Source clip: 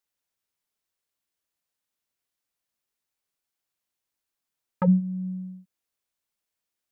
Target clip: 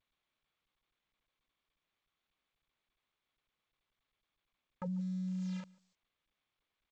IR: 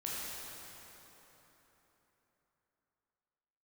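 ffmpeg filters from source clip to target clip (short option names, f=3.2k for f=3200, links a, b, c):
-filter_complex "[0:a]adynamicequalizer=threshold=0.00282:dfrequency=790:dqfactor=5.2:tfrequency=790:tqfactor=5.2:attack=5:release=100:ratio=0.375:range=3.5:mode=boostabove:tftype=bell,acrusher=bits=8:mix=0:aa=0.000001,alimiter=limit=-24dB:level=0:latency=1:release=34,areverse,acompressor=threshold=-41dB:ratio=10,areverse,equalizer=f=110:w=2.1:g=-5,asplit=2[a][b];[b]adelay=144,lowpass=f=1.5k:p=1,volume=-22dB,asplit=2[c][d];[d]adelay=144,lowpass=f=1.5k:p=1,volume=0.15[e];[a][c][e]amix=inputs=3:normalize=0,volume=6dB" -ar 16000 -c:a g722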